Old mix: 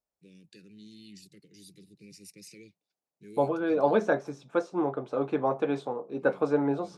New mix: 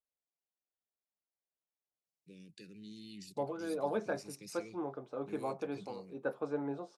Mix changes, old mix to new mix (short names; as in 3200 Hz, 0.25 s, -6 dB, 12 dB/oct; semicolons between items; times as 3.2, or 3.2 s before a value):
first voice: entry +2.05 s; second voice -11.0 dB